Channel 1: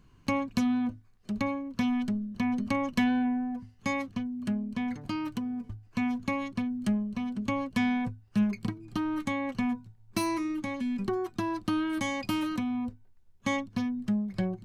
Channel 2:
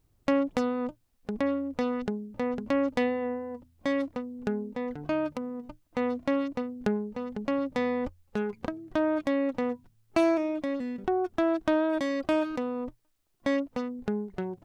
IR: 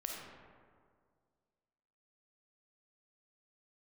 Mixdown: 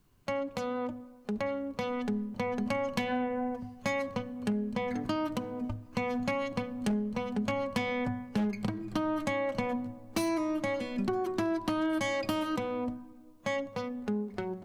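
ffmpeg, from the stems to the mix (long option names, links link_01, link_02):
-filter_complex "[0:a]bandreject=frequency=61.9:width_type=h:width=4,bandreject=frequency=123.8:width_type=h:width=4,bandreject=frequency=185.7:width_type=h:width=4,bandreject=frequency=247.6:width_type=h:width=4,bandreject=frequency=309.5:width_type=h:width=4,bandreject=frequency=371.4:width_type=h:width=4,bandreject=frequency=433.3:width_type=h:width=4,bandreject=frequency=495.2:width_type=h:width=4,bandreject=frequency=557.1:width_type=h:width=4,bandreject=frequency=619:width_type=h:width=4,bandreject=frequency=680.9:width_type=h:width=4,bandreject=frequency=742.8:width_type=h:width=4,bandreject=frequency=804.7:width_type=h:width=4,bandreject=frequency=866.6:width_type=h:width=4,bandreject=frequency=928.5:width_type=h:width=4,bandreject=frequency=990.4:width_type=h:width=4,bandreject=frequency=1052.3:width_type=h:width=4,bandreject=frequency=1114.2:width_type=h:width=4,bandreject=frequency=1176.1:width_type=h:width=4,bandreject=frequency=1238:width_type=h:width=4,bandreject=frequency=1299.9:width_type=h:width=4,bandreject=frequency=1361.8:width_type=h:width=4,bandreject=frequency=1423.7:width_type=h:width=4,bandreject=frequency=1485.6:width_type=h:width=4,bandreject=frequency=1547.5:width_type=h:width=4,bandreject=frequency=1609.4:width_type=h:width=4,bandreject=frequency=1671.3:width_type=h:width=4,bandreject=frequency=1733.2:width_type=h:width=4,bandreject=frequency=1795.1:width_type=h:width=4,bandreject=frequency=1857:width_type=h:width=4,bandreject=frequency=1918.9:width_type=h:width=4,bandreject=frequency=1980.8:width_type=h:width=4,bandreject=frequency=2042.7:width_type=h:width=4,bandreject=frequency=2104.6:width_type=h:width=4,bandreject=frequency=2166.5:width_type=h:width=4,dynaudnorm=framelen=440:gausssize=11:maxgain=11dB,volume=-9dB,asplit=2[link_01][link_02];[link_02]volume=-15.5dB[link_03];[1:a]alimiter=level_in=0.5dB:limit=-24dB:level=0:latency=1:release=140,volume=-0.5dB,highpass=frequency=250:poles=1,volume=-1,volume=1dB,asplit=2[link_04][link_05];[link_05]volume=-16.5dB[link_06];[2:a]atrim=start_sample=2205[link_07];[link_03][link_06]amix=inputs=2:normalize=0[link_08];[link_08][link_07]afir=irnorm=-1:irlink=0[link_09];[link_01][link_04][link_09]amix=inputs=3:normalize=0,aeval=exprs='0.126*(abs(mod(val(0)/0.126+3,4)-2)-1)':channel_layout=same,acompressor=threshold=-27dB:ratio=6"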